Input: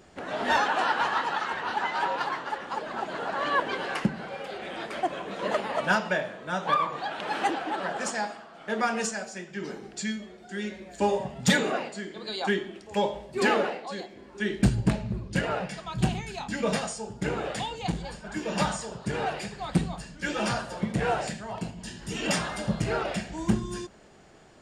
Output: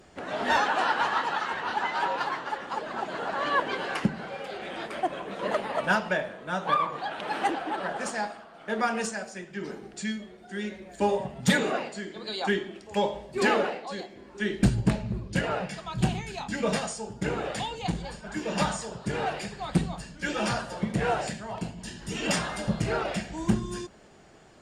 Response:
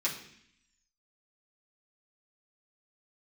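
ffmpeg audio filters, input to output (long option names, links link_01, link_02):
-ar 48000 -c:a libopus -b:a 48k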